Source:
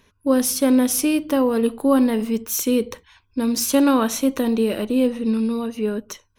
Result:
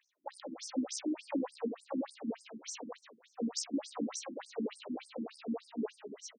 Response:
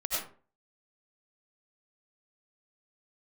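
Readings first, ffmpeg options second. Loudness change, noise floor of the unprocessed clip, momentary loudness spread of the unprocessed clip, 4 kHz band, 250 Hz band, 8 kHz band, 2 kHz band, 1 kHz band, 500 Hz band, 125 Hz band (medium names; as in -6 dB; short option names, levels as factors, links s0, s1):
-20.0 dB, -64 dBFS, 8 LU, -15.0 dB, -20.0 dB, -18.0 dB, -20.0 dB, -19.0 dB, -20.0 dB, no reading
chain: -filter_complex "[0:a]agate=range=0.398:threshold=0.00355:ratio=16:detection=peak,tremolo=f=65:d=0.75,acrossover=split=350|7800[s0][s1][s2];[s0]acompressor=threshold=0.0316:ratio=4[s3];[s1]acompressor=threshold=0.0158:ratio=4[s4];[s2]acompressor=threshold=0.0112:ratio=4[s5];[s3][s4][s5]amix=inputs=3:normalize=0,equalizer=f=160:t=o:w=1.4:g=-5.5,aeval=exprs='clip(val(0),-1,0.0119)':c=same,asplit=2[s6][s7];[s7]adelay=758,volume=0.0708,highshelf=f=4000:g=-17.1[s8];[s6][s8]amix=inputs=2:normalize=0,asplit=2[s9][s10];[1:a]atrim=start_sample=2205,adelay=39[s11];[s10][s11]afir=irnorm=-1:irlink=0,volume=0.335[s12];[s9][s12]amix=inputs=2:normalize=0,afftfilt=real='re*between(b*sr/1024,240*pow(6700/240,0.5+0.5*sin(2*PI*3.4*pts/sr))/1.41,240*pow(6700/240,0.5+0.5*sin(2*PI*3.4*pts/sr))*1.41)':imag='im*between(b*sr/1024,240*pow(6700/240,0.5+0.5*sin(2*PI*3.4*pts/sr))/1.41,240*pow(6700/240,0.5+0.5*sin(2*PI*3.4*pts/sr))*1.41)':win_size=1024:overlap=0.75,volume=1.33"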